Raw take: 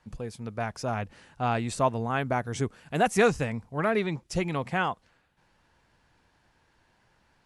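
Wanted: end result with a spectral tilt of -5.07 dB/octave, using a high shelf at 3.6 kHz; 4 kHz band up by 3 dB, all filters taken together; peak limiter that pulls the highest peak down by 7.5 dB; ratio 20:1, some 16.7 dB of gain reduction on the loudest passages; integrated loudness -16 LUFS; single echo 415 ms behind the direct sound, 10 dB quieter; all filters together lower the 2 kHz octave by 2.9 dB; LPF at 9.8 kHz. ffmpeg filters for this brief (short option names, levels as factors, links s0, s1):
-af "lowpass=9800,equalizer=f=2000:t=o:g=-5,highshelf=f=3600:g=-3.5,equalizer=f=4000:t=o:g=8,acompressor=threshold=0.02:ratio=20,alimiter=level_in=2.51:limit=0.0631:level=0:latency=1,volume=0.398,aecho=1:1:415:0.316,volume=21.1"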